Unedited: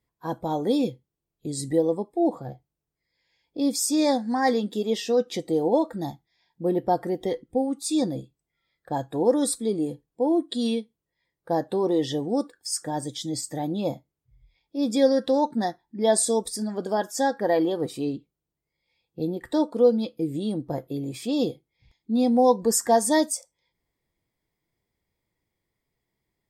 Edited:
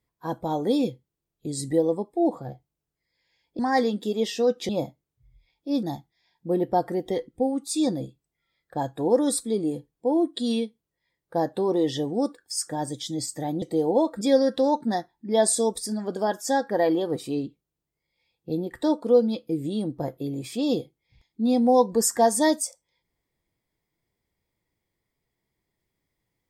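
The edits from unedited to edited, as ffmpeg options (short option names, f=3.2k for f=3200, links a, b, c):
-filter_complex "[0:a]asplit=6[a][b][c][d][e][f];[a]atrim=end=3.592[g];[b]atrim=start=4.288:end=5.392[h];[c]atrim=start=13.768:end=14.912[i];[d]atrim=start=5.978:end=13.772[j];[e]atrim=start=5.388:end=5.982[k];[f]atrim=start=14.908[l];[g][h]acrossfade=d=0.004:c1=hsin:c2=hsin[m];[m][i]acrossfade=d=0.004:c1=hsin:c2=hsin[n];[n][j]acrossfade=d=0.004:c1=hsin:c2=hsin[o];[o][k]acrossfade=d=0.004:c1=hsin:c2=hsin[p];[p][l]acrossfade=d=0.004:c1=hsin:c2=hsin"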